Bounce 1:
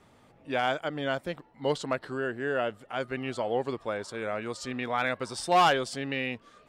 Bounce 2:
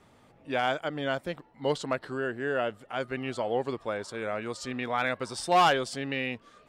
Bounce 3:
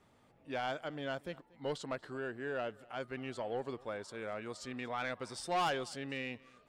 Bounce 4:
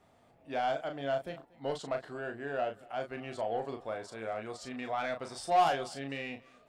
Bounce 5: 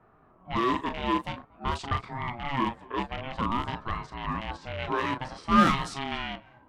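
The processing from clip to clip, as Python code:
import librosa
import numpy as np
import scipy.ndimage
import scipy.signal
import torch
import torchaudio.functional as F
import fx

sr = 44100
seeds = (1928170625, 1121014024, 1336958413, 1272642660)

y1 = x
y2 = 10.0 ** (-19.5 / 20.0) * np.tanh(y1 / 10.0 ** (-19.5 / 20.0))
y2 = y2 + 10.0 ** (-23.5 / 20.0) * np.pad(y2, (int(235 * sr / 1000.0), 0))[:len(y2)]
y2 = y2 * librosa.db_to_amplitude(-8.0)
y3 = fx.peak_eq(y2, sr, hz=690.0, db=10.5, octaves=0.31)
y3 = fx.doubler(y3, sr, ms=36.0, db=-6.5)
y4 = fx.rattle_buzz(y3, sr, strikes_db=-46.0, level_db=-33.0)
y4 = fx.env_lowpass(y4, sr, base_hz=1100.0, full_db=-29.5)
y4 = fx.ring_lfo(y4, sr, carrier_hz=440.0, swing_pct=25, hz=0.51)
y4 = y4 * librosa.db_to_amplitude(8.5)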